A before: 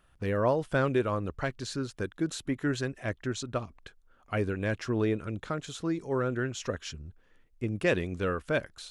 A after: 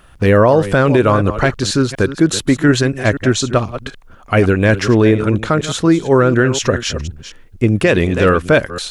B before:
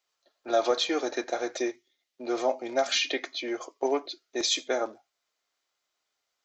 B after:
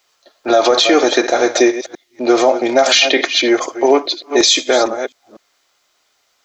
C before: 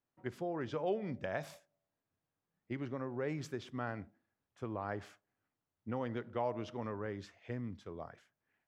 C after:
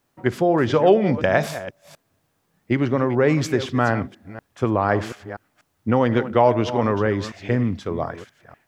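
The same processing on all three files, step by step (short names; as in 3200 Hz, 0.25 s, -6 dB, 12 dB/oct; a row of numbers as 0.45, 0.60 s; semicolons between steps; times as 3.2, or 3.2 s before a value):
reverse delay 0.244 s, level -13 dB; limiter -21 dBFS; normalise peaks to -2 dBFS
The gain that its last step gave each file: +19.0, +19.0, +20.0 dB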